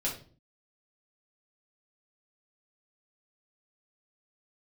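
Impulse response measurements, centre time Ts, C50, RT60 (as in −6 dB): 24 ms, 7.5 dB, 0.45 s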